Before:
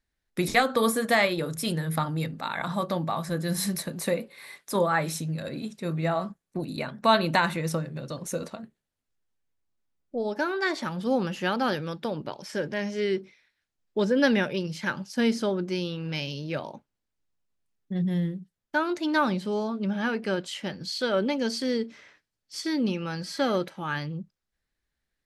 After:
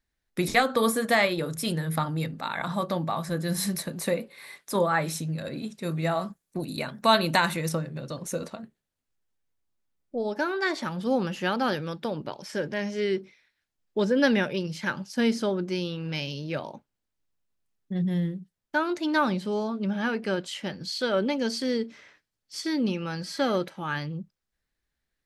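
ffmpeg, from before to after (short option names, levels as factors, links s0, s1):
-filter_complex "[0:a]asettb=1/sr,asplit=3[s0][s1][s2];[s0]atrim=end=5.824[s3];[s1]atrim=start=5.82:end=7.69,asetpts=PTS-STARTPTS,afade=t=in:d=0.004:c=qsin,afade=t=out:st=1.866:d=0.004:c=qsin,aemphasis=mode=production:type=cd[s4];[s2]atrim=start=7.686[s5];[s3][s4]acrossfade=d=0.004:c1=hsin:c2=qsin[s6];[s6][s5]acrossfade=d=0.004:c1=qsin:c2=hsin"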